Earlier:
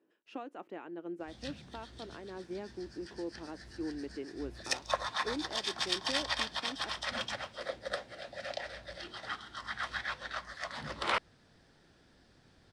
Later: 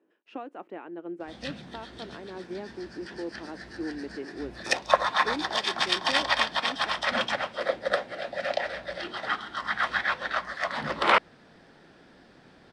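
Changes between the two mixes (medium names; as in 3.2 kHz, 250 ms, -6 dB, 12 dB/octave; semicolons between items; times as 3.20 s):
speech -7.0 dB; master: add FFT filter 100 Hz 0 dB, 180 Hz +10 dB, 720 Hz +12 dB, 2.4 kHz +10 dB, 6.3 kHz +2 dB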